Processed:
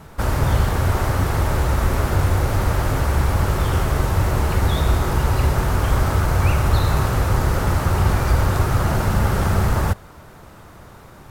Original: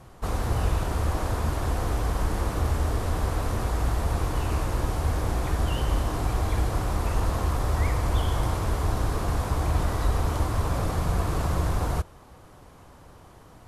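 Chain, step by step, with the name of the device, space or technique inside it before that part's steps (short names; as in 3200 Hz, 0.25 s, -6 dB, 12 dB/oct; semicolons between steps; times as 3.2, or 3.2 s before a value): nightcore (varispeed +21%); gain +7 dB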